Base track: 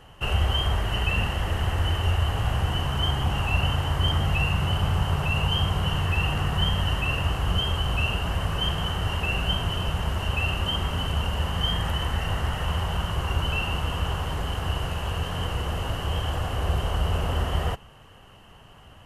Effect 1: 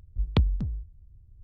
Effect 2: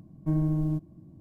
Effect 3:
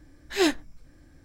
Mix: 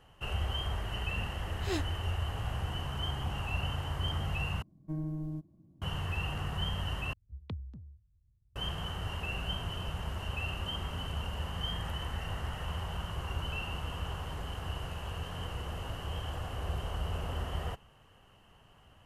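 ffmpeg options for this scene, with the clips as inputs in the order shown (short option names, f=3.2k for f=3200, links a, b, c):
-filter_complex "[0:a]volume=-10.5dB[a];[1:a]afreqshift=19[b];[a]asplit=3[c][d][e];[c]atrim=end=4.624[f];[2:a]atrim=end=1.2,asetpts=PTS-STARTPTS,volume=-10.5dB[g];[d]atrim=start=5.816:end=7.134[h];[b]atrim=end=1.43,asetpts=PTS-STARTPTS,volume=-18dB[i];[e]atrim=start=8.556[j];[3:a]atrim=end=1.24,asetpts=PTS-STARTPTS,volume=-13dB,afade=t=in:d=0.004:c=hsin,afade=t=out:st=1.236:d=0.004:c=hsin,adelay=1300[k];[f][g]acrossfade=d=0.004:c1=hsin:c2=hsin[l];[l][h]acrossfade=d=0.004:c1=hsin:c2=hsin[m];[m][i]acrossfade=d=0.004:c1=hsin:c2=hsin[n];[n][j]acrossfade=d=0.004:c1=hsin:c2=hsin[o];[o][k]amix=inputs=2:normalize=0"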